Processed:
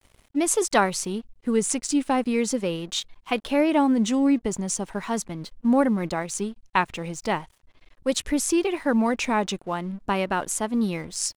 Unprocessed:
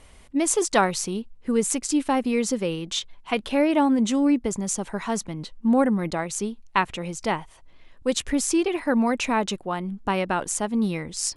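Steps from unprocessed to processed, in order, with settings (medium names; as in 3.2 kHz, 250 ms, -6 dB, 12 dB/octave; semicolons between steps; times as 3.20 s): vibrato 0.4 Hz 55 cents; crossover distortion -49.5 dBFS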